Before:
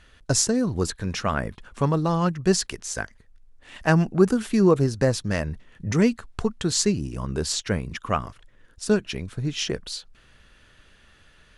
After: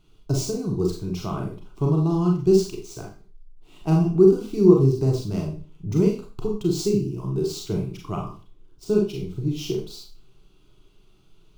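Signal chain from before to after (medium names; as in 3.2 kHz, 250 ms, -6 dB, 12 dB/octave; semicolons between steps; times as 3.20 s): median filter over 5 samples; resonant low shelf 560 Hz +7.5 dB, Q 1.5; static phaser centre 350 Hz, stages 8; Schroeder reverb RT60 0.37 s, combs from 30 ms, DRR -0.5 dB; trim -6.5 dB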